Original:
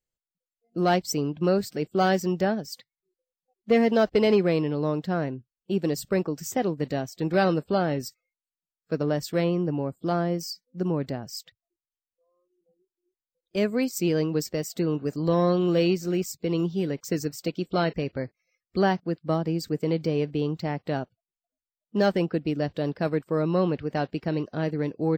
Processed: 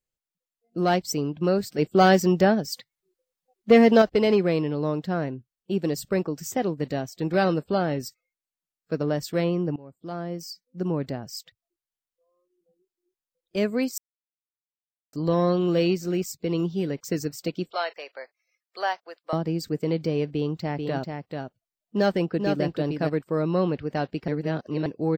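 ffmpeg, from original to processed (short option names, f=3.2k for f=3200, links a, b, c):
-filter_complex "[0:a]asettb=1/sr,asplit=3[a][b][c];[a]atrim=end=1.784[d];[b]atrim=start=1.78:end=4.02,asetpts=PTS-STARTPTS,afade=t=in:d=0.004:c=qsin,afade=t=out:st=2.236:d=0.004:c=qsin,acontrast=40[e];[c]atrim=start=4.016[f];[d][e]acrossfade=d=0.004:c1=hsin:c2=qsin[g];[g][f]acrossfade=d=0.004:c1=qsin:c2=hsin,asettb=1/sr,asplit=3[h][i][j];[h]atrim=end=17.704[k];[i]atrim=start=17.7:end=19.33,asetpts=PTS-STARTPTS,afade=t=in:d=0.004:c=qsin,afade=t=out:st=1.626:d=0.004:c=qsin,highpass=f=620:w=0.5412,highpass=f=620:w=1.3066[l];[j]atrim=start=19.326[m];[k][l]acrossfade=d=0.004:c1=hsin:c2=qsin[n];[n][m]acrossfade=d=0.004:c1=qsin:c2=hsin,asplit=3[o][p][q];[o]afade=t=out:st=20.77:d=0.02[r];[p]aecho=1:1:439:0.562,afade=t=in:st=20.77:d=0.02,afade=t=out:st=23.08:d=0.02[s];[q]afade=t=in:st=23.08:d=0.02[t];[r][s][t]amix=inputs=3:normalize=0,asplit=6[u][v][w][x][y][z];[u]atrim=end=9.76,asetpts=PTS-STARTPTS,afade=t=out:st=9.756:d=0.004:c=hsin:silence=0.1[aa];[v]atrim=start=9.76:end=13.98,asetpts=PTS-STARTPTS,afade=t=in:d=1.18:silence=0.1,afade=t=out:st=4.216:d=0.004:c=hsin[ab];[w]atrim=start=13.98:end=15.13,asetpts=PTS-STARTPTS,volume=0[ac];[x]atrim=start=15.13:end=24.282,asetpts=PTS-STARTPTS,afade=t=in:d=0.004:c=hsin[ad];[y]atrim=start=24.278:end=24.862,asetpts=PTS-STARTPTS,areverse[ae];[z]atrim=start=24.858[af];[aa][ab][ac][ad]concat=n=4:v=0:a=1[ag];[ag][ae]acrossfade=d=0.004:c1=hsin:c2=hsin[ah];[ah][af]acrossfade=d=0.004:c1=hsin:c2=hsin"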